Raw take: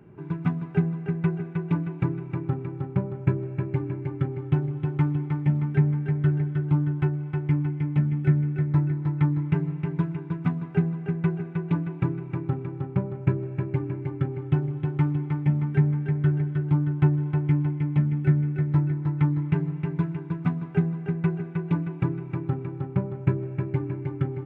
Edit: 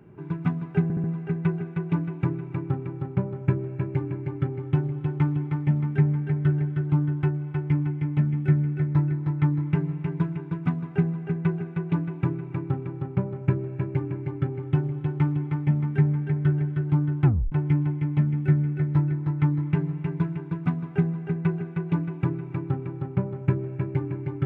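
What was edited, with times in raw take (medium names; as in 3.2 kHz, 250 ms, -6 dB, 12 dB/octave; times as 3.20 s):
0.83 s: stutter 0.07 s, 4 plays
17.04 s: tape stop 0.27 s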